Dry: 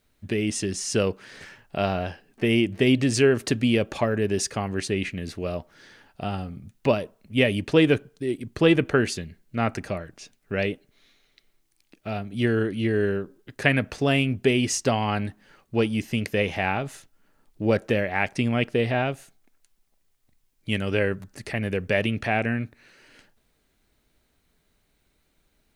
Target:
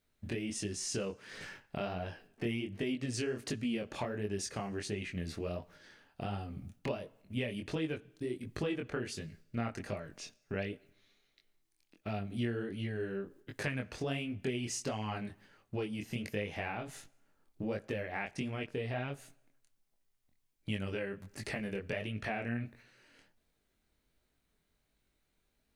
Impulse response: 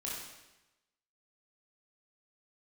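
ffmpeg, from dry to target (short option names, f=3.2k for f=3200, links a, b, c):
-filter_complex "[0:a]agate=range=-7dB:threshold=-49dB:ratio=16:detection=peak,acompressor=threshold=-33dB:ratio=4,flanger=delay=19:depth=6.5:speed=1.4,asplit=2[a][b];[1:a]atrim=start_sample=2205[c];[b][c]afir=irnorm=-1:irlink=0,volume=-23dB[d];[a][d]amix=inputs=2:normalize=0"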